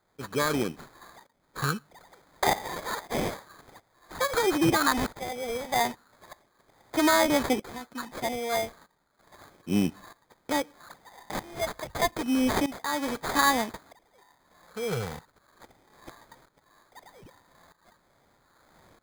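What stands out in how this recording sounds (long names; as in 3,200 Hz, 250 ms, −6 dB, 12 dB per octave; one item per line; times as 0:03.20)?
phaser sweep stages 6, 0.32 Hz, lowest notch 280–4,400 Hz
tremolo saw up 0.79 Hz, depth 85%
aliases and images of a low sample rate 2,800 Hz, jitter 0%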